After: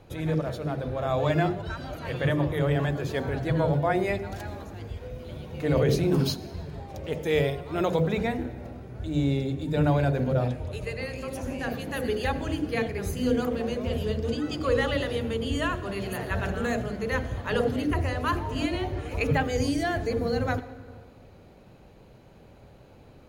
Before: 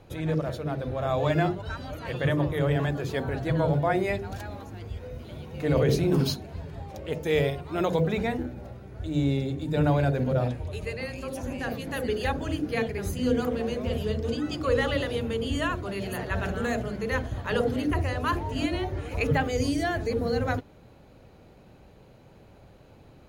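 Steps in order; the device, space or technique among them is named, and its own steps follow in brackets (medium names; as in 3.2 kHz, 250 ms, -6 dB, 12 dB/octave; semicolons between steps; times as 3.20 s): compressed reverb return (on a send at -7.5 dB: reverberation RT60 1.2 s, pre-delay 76 ms + compression, threshold -31 dBFS, peak gain reduction 14 dB)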